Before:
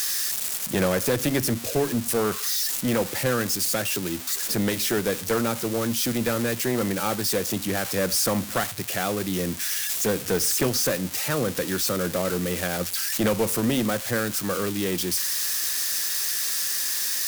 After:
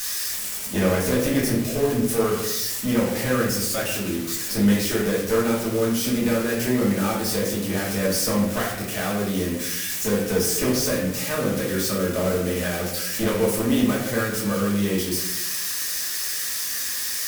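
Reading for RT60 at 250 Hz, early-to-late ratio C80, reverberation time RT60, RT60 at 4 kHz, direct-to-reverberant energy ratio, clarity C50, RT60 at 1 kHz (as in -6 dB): 1.0 s, 6.0 dB, 0.85 s, 0.55 s, -6.0 dB, 3.0 dB, 0.75 s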